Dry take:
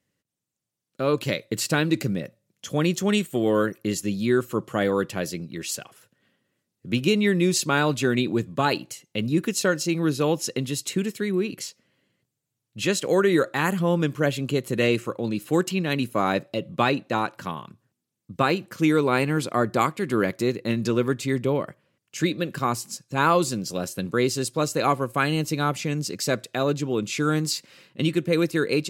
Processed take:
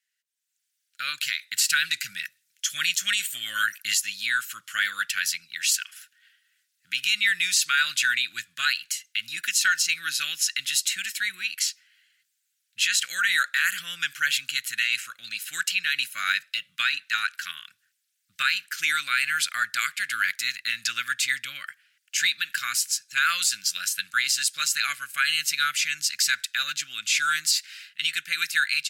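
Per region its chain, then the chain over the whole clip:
0:01.62–0:04.02: bass and treble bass +5 dB, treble +5 dB + auto-filter bell 5.8 Hz 490–3,100 Hz +7 dB
whole clip: elliptic high-pass filter 1,500 Hz, stop band 40 dB; automatic gain control gain up to 10.5 dB; brickwall limiter −11.5 dBFS

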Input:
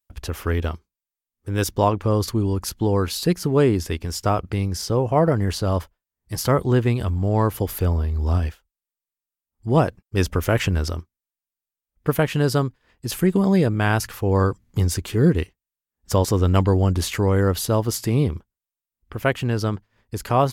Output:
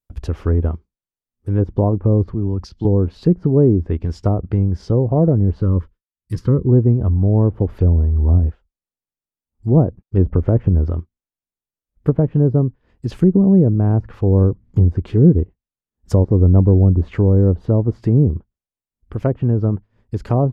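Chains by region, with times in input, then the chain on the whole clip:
0:02.34–0:02.85: parametric band 5,000 Hz +13.5 dB 1 octave + downward compressor 3 to 1, threshold −24 dBFS + multiband upward and downward expander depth 100%
0:05.62–0:06.69: noise gate with hold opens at −50 dBFS, closes at −56 dBFS + Butterworth band-reject 710 Hz, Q 1.3 + high-shelf EQ 6,300 Hz +9.5 dB
whole clip: treble cut that deepens with the level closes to 620 Hz, closed at −16.5 dBFS; tilt shelving filter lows +7.5 dB, about 720 Hz

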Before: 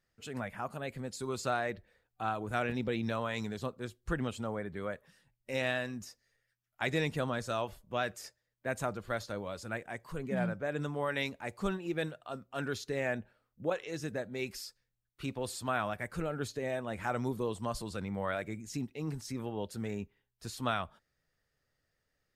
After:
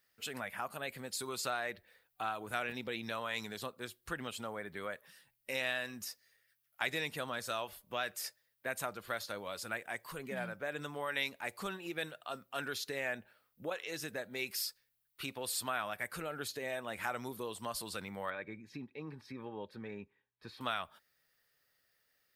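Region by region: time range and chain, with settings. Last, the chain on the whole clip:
0:18.30–0:20.61: high-frequency loss of the air 360 metres + notch filter 3,000 Hz, Q 8.6 + notch comb filter 690 Hz
whole clip: parametric band 6,900 Hz −8.5 dB 0.89 octaves; downward compressor 2 to 1, threshold −39 dBFS; spectral tilt +3.5 dB per octave; level +2.5 dB

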